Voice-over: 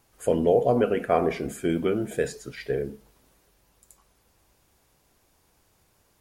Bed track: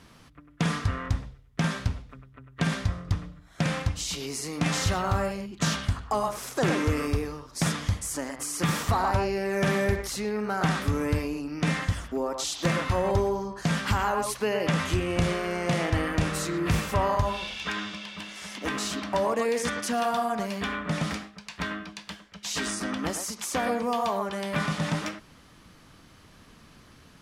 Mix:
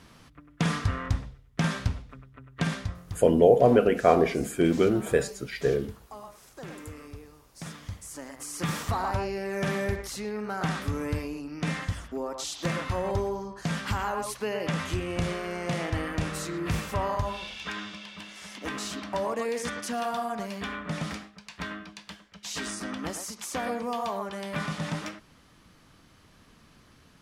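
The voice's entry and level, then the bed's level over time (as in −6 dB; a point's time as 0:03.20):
2.95 s, +2.5 dB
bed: 0:02.56 0 dB
0:03.46 −17 dB
0:07.36 −17 dB
0:08.63 −4 dB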